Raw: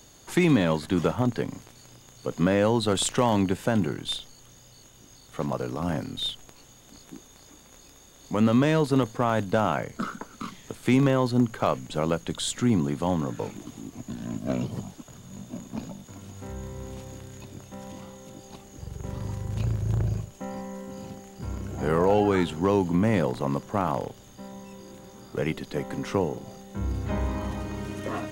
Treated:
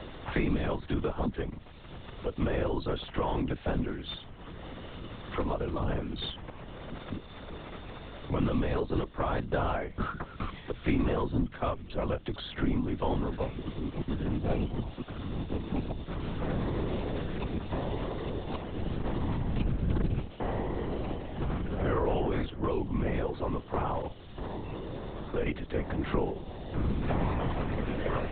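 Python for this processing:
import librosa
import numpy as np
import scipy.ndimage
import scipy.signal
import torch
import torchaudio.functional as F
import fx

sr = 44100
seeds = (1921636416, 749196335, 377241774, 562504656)

y = fx.rider(x, sr, range_db=10, speed_s=2.0)
y = fx.lpc_vocoder(y, sr, seeds[0], excitation='whisper', order=10)
y = fx.band_squash(y, sr, depth_pct=70)
y = y * librosa.db_to_amplitude(-5.5)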